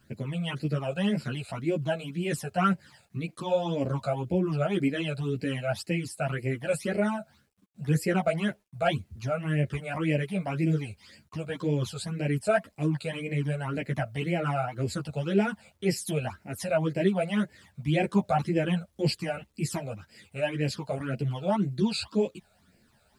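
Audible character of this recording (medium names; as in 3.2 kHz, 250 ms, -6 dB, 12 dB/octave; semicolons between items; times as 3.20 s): phasing stages 12, 1.9 Hz, lowest notch 310–1200 Hz; a quantiser's noise floor 12-bit, dither none; a shimmering, thickened sound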